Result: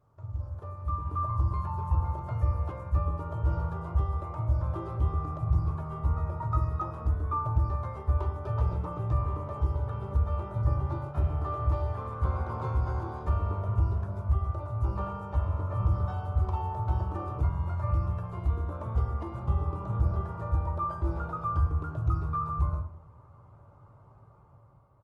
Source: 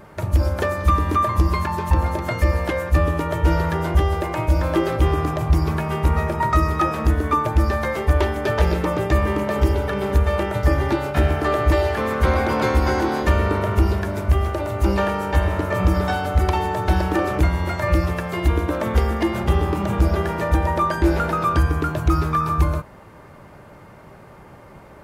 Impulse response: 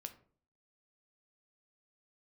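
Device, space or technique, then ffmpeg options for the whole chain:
far-field microphone of a smart speaker: -filter_complex "[0:a]firequalizer=gain_entry='entry(100,0);entry(200,-20);entry(1200,-9);entry(1700,-29);entry(2900,-27)':delay=0.05:min_phase=1,asplit=2[link_01][link_02];[link_02]adelay=107,lowpass=frequency=1200:poles=1,volume=-13.5dB,asplit=2[link_03][link_04];[link_04]adelay=107,lowpass=frequency=1200:poles=1,volume=0.17[link_05];[link_01][link_03][link_05]amix=inputs=3:normalize=0[link_06];[1:a]atrim=start_sample=2205[link_07];[link_06][link_07]afir=irnorm=-1:irlink=0,highpass=84,dynaudnorm=framelen=190:gausssize=11:maxgain=10dB,volume=-6.5dB" -ar 48000 -c:a libopus -b:a 20k

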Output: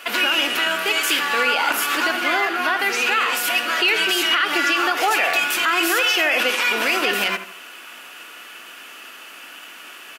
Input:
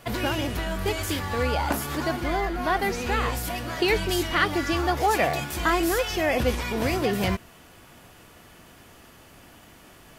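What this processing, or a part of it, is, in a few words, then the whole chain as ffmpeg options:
laptop speaker: -filter_complex "[0:a]asettb=1/sr,asplit=3[link_01][link_02][link_03];[link_01]atrim=end=5.954[link_04];[link_02]atrim=start=5.95:end=6.69,asetpts=PTS-STARTPTS,afade=type=in:duration=0.004:curve=qsin,afade=type=out:start_time=0.736:duration=0.004:curve=qsin,highpass=220[link_05];[link_03]atrim=start=6.686[link_06];[link_04][link_05]acrossfade=duration=0.004:curve1=hsin:curve2=qsin[link_07];[link_07][link_06]acrossfade=duration=0.004:curve1=qsin:curve2=hsin,highpass=frequency=260:width=0.5412,highpass=frequency=260:width=1.3066,tiltshelf=frequency=1100:gain=-4.5,equalizer=frequency=1400:width_type=o:width=0.6:gain=9,equalizer=frequency=2700:width_type=o:width=0.48:gain=11,alimiter=limit=-14.5dB:level=0:latency=1:release=71,asplit=2[link_08][link_09];[link_09]adelay=80,lowpass=frequency=2200:poles=1,volume=-10dB,asplit=2[link_10][link_11];[link_11]adelay=80,lowpass=frequency=2200:poles=1,volume=0.39,asplit=2[link_12][link_13];[link_13]adelay=80,lowpass=frequency=2200:poles=1,volume=0.39,asplit=2[link_14][link_15];[link_15]adelay=80,lowpass=frequency=2200:poles=1,volume=0.39[link_16];[link_08][link_10][link_12][link_14][link_16]amix=inputs=5:normalize=0,volume=5dB"

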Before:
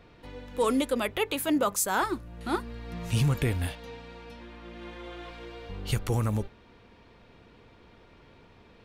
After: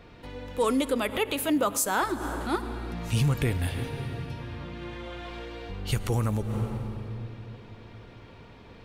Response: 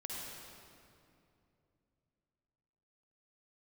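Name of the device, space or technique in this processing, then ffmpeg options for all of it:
ducked reverb: -filter_complex "[0:a]asplit=3[link_01][link_02][link_03];[1:a]atrim=start_sample=2205[link_04];[link_02][link_04]afir=irnorm=-1:irlink=0[link_05];[link_03]apad=whole_len=390024[link_06];[link_05][link_06]sidechaincompress=threshold=-43dB:ratio=6:attack=8.8:release=105,volume=1dB[link_07];[link_01][link_07]amix=inputs=2:normalize=0"

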